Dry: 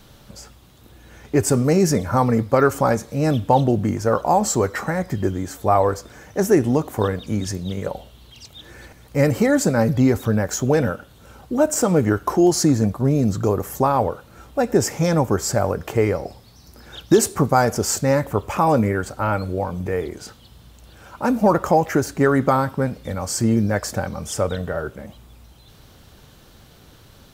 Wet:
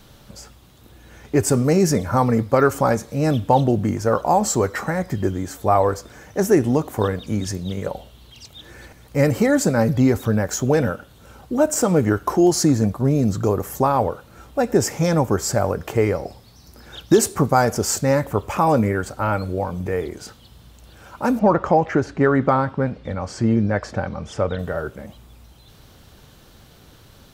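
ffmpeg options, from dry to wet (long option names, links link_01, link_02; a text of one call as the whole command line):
ffmpeg -i in.wav -filter_complex "[0:a]asettb=1/sr,asplit=3[link_01][link_02][link_03];[link_01]atrim=end=21.394[link_04];[link_02]atrim=start=21.39:end=24.59,asetpts=PTS-STARTPTS,afade=type=in:duration=0.004:curve=qsin,afade=type=out:start_time=3.196:duration=0.004:curve=qsin,lowpass=3400[link_05];[link_03]atrim=start=24.586[link_06];[link_04][link_05]acrossfade=duration=0.004:curve1=hsin:curve2=qsin[link_07];[link_07][link_06]acrossfade=duration=0.004:curve1=qsin:curve2=hsin" out.wav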